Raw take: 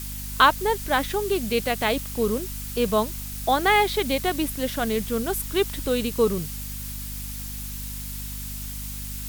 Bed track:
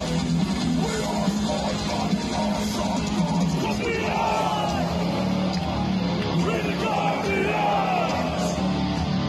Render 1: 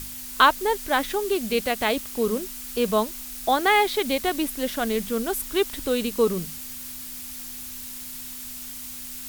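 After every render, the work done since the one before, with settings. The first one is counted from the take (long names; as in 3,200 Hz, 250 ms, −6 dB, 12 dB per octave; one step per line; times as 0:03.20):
mains-hum notches 50/100/150/200 Hz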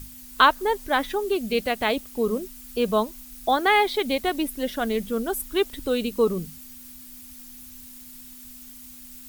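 broadband denoise 10 dB, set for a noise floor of −37 dBFS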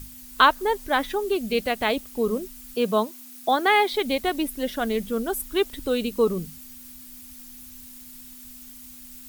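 0:02.74–0:03.92: high-pass filter 100 Hz 24 dB per octave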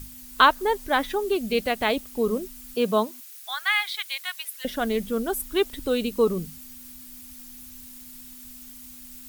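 0:03.20–0:04.65: high-pass filter 1,300 Hz 24 dB per octave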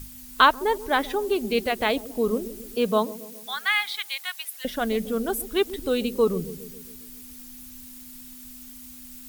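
delay with a low-pass on its return 136 ms, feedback 54%, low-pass 450 Hz, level −12 dB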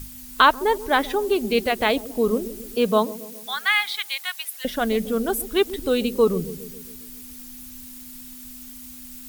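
level +3 dB
brickwall limiter −3 dBFS, peak gain reduction 3 dB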